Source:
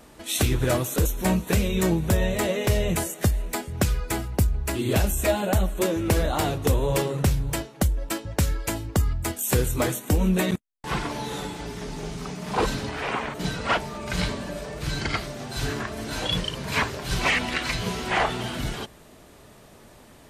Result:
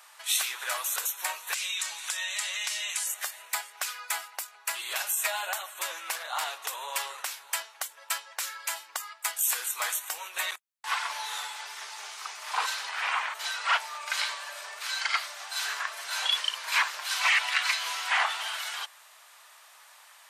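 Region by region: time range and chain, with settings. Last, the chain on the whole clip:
1.54–3.07 s: frequency weighting ITU-R 468 + compression 4:1, threshold -31 dBFS
6.15–6.68 s: bass shelf 190 Hz +9 dB + loudspeaker Doppler distortion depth 0.18 ms
whole clip: peak limiter -15 dBFS; inverse Chebyshev high-pass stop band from 210 Hz, stop band 70 dB; trim +2 dB

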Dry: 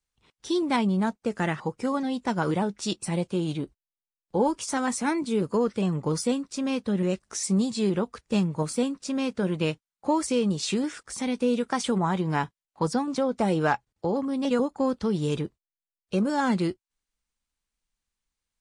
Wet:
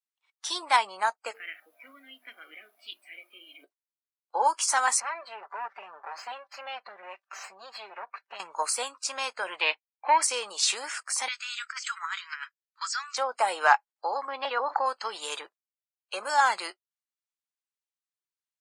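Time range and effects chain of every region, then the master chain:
1.33–3.63 s: vowel filter i + hum notches 50/100/150/200/250/300/350/400/450 Hz + added noise brown -48 dBFS
5.00–8.40 s: comb filter that takes the minimum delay 5.1 ms + compression 2:1, threshold -40 dBFS + distance through air 150 m
9.61–10.22 s: waveshaping leveller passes 1 + cabinet simulation 170–4200 Hz, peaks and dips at 170 Hz -10 dB, 530 Hz -4 dB, 1.3 kHz -8 dB, 2.3 kHz +7 dB + tape noise reduction on one side only decoder only
11.28–13.17 s: Chebyshev band-pass 1.3–7.7 kHz, order 4 + compressor with a negative ratio -39 dBFS, ratio -0.5
14.28–14.86 s: high-pass 210 Hz + distance through air 210 m + level flattener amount 70%
whole clip: high-pass 800 Hz 24 dB/octave; spectral noise reduction 20 dB; dynamic bell 2.9 kHz, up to -4 dB, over -45 dBFS, Q 1.2; trim +8 dB

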